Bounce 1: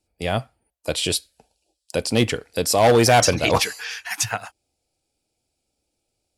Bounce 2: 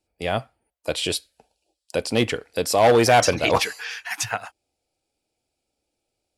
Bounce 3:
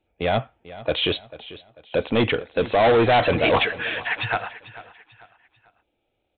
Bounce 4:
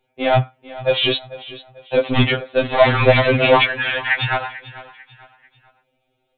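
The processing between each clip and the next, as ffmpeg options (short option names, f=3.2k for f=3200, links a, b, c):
-af "bass=f=250:g=-5,treble=f=4k:g=-5"
-af "aresample=8000,asoftclip=type=tanh:threshold=-19.5dB,aresample=44100,aecho=1:1:443|886|1329:0.141|0.0523|0.0193,volume=6dB"
-af "afftfilt=real='re*2.45*eq(mod(b,6),0)':imag='im*2.45*eq(mod(b,6),0)':win_size=2048:overlap=0.75,volume=8dB"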